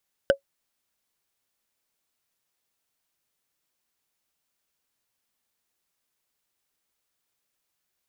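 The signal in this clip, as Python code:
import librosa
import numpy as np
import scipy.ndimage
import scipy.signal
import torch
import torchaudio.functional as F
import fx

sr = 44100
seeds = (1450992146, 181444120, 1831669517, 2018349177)

y = fx.strike_wood(sr, length_s=0.45, level_db=-10, body='bar', hz=553.0, decay_s=0.1, tilt_db=5, modes=5)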